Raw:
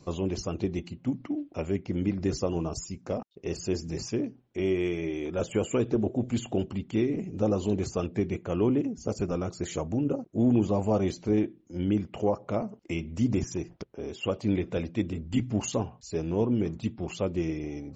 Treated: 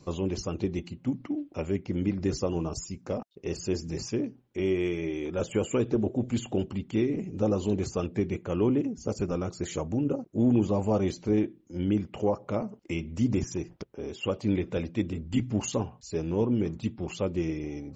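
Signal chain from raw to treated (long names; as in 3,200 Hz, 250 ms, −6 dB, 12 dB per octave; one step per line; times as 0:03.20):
notch filter 680 Hz, Q 12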